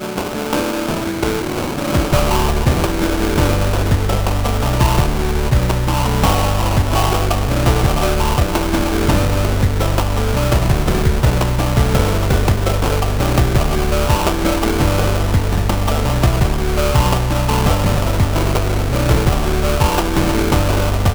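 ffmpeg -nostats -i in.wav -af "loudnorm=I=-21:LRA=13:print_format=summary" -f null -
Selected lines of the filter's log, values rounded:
Input Integrated:    -16.7 LUFS
Input True Peak:      -2.5 dBTP
Input LRA:             0.5 LU
Input Threshold:     -26.7 LUFS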